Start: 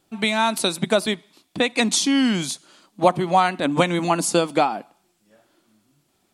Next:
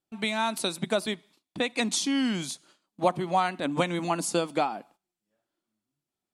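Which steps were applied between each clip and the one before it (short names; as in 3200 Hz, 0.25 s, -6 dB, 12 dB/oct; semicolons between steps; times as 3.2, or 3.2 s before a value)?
gate -48 dBFS, range -15 dB; gain -7.5 dB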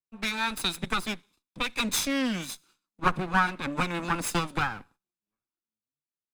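minimum comb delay 0.8 ms; dynamic EQ 1900 Hz, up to +4 dB, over -43 dBFS, Q 0.91; three-band expander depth 40%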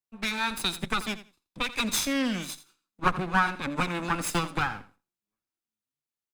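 feedback echo 84 ms, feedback 17%, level -15 dB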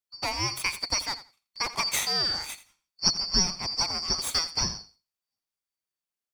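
four-band scrambler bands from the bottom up 2341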